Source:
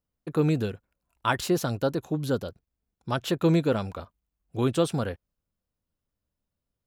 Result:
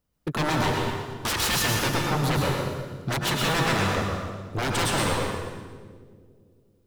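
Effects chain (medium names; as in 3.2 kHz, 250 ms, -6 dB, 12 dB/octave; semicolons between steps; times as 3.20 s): 0.63–1.55 s: comb 2.7 ms, depth 77%; wavefolder -29 dBFS; on a send: two-band feedback delay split 470 Hz, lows 280 ms, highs 117 ms, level -11 dB; on the sum: plate-style reverb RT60 1.2 s, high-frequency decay 0.85×, pre-delay 95 ms, DRR -0.5 dB; trim +7.5 dB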